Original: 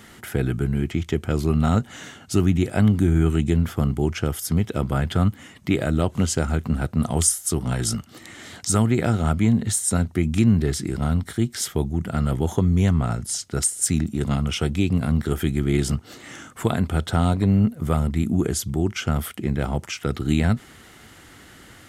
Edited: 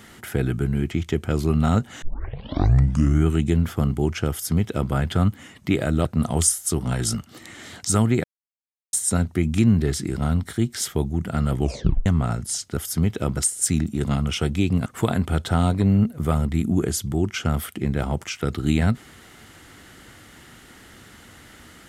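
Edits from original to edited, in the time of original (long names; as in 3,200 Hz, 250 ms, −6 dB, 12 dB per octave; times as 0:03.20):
0:02.02: tape start 1.24 s
0:04.31–0:04.91: duplicate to 0:13.57
0:06.05–0:06.85: remove
0:09.04–0:09.73: silence
0:12.39: tape stop 0.47 s
0:15.06–0:16.48: remove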